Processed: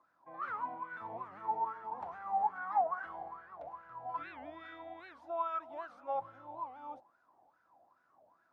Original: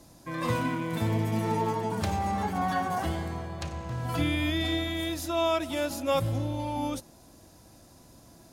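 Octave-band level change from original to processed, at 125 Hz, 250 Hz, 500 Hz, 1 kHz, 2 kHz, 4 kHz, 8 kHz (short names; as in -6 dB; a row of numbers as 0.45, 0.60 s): under -30 dB, -26.5 dB, -13.0 dB, -4.0 dB, -11.0 dB, under -25 dB, under -35 dB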